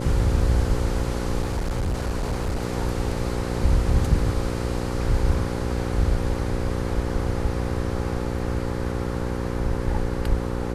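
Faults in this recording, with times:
buzz 60 Hz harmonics 9 -28 dBFS
1.42–2.62 s: clipped -21.5 dBFS

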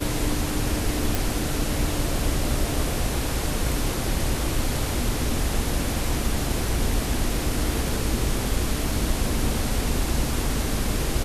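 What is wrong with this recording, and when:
1.15 s: pop

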